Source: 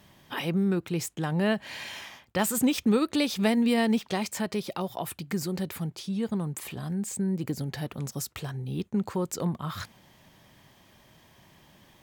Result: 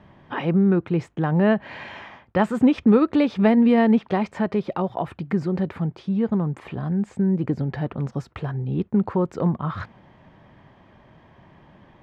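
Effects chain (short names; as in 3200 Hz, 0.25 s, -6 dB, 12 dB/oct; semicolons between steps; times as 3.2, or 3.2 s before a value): LPF 1600 Hz 12 dB/oct; gain +7.5 dB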